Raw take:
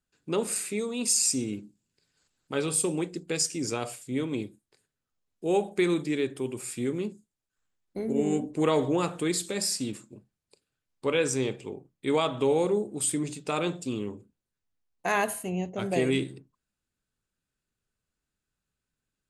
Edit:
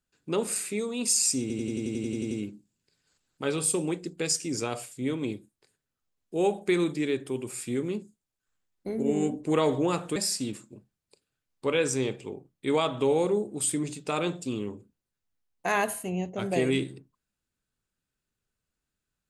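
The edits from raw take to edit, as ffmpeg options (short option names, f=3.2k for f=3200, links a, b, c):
-filter_complex "[0:a]asplit=12[a][b][c][d][e][f][g][h][i][j][k][l];[a]atrim=end=1.502[m];[b]atrim=start=1.408:end=1.502[n];[c]atrim=start=1.408:end=1.502[o];[d]atrim=start=1.408:end=1.502[p];[e]atrim=start=1.408:end=1.502[q];[f]atrim=start=1.408:end=1.502[r];[g]atrim=start=1.408:end=1.502[s];[h]atrim=start=1.408:end=1.502[t];[i]atrim=start=1.408:end=1.502[u];[j]atrim=start=1.408:end=1.502[v];[k]atrim=start=1.408:end=9.262[w];[l]atrim=start=9.558[x];[m][n]acrossfade=d=0.004:c1=hsin:c2=hsin[y];[y][o]acrossfade=d=0.004:c1=hsin:c2=hsin[z];[z][p]acrossfade=d=0.004:c1=hsin:c2=hsin[aa];[aa][q]acrossfade=d=0.004:c1=hsin:c2=hsin[ab];[ab][r]acrossfade=d=0.004:c1=hsin:c2=hsin[ac];[ac][s]acrossfade=d=0.004:c1=hsin:c2=hsin[ad];[ad][t]acrossfade=d=0.004:c1=hsin:c2=hsin[ae];[ae][u]acrossfade=d=0.004:c1=hsin:c2=hsin[af];[af][v]acrossfade=d=0.004:c1=hsin:c2=hsin[ag];[ag][w]acrossfade=d=0.004:c1=hsin:c2=hsin[ah];[ah][x]acrossfade=d=0.004:c1=hsin:c2=hsin"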